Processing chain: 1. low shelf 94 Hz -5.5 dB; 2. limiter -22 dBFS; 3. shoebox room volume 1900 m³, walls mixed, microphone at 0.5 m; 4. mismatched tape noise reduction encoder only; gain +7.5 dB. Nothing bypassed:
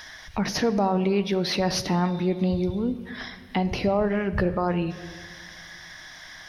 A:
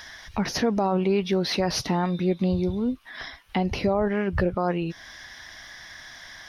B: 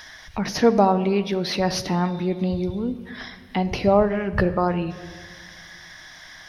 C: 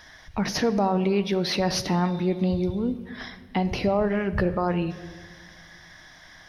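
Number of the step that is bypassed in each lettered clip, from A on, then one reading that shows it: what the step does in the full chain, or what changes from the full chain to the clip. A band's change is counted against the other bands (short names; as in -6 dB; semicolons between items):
3, crest factor change -1.5 dB; 2, crest factor change +4.0 dB; 4, momentary loudness spread change -5 LU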